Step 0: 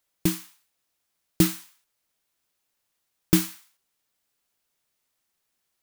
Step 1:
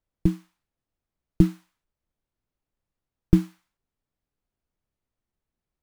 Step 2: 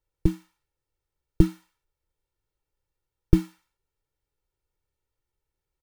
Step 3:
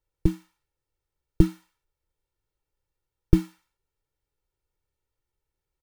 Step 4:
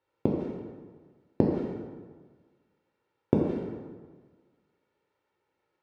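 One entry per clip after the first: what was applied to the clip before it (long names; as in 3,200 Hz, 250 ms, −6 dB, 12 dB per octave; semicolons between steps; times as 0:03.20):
spectral tilt −4.5 dB per octave; level −7.5 dB
comb filter 2.2 ms, depth 77%; level −1 dB
no processing that can be heard
gate with flip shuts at −12 dBFS, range −29 dB; band-pass filter 230–2,700 Hz; dense smooth reverb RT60 1.5 s, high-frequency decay 0.65×, DRR −2.5 dB; level +8.5 dB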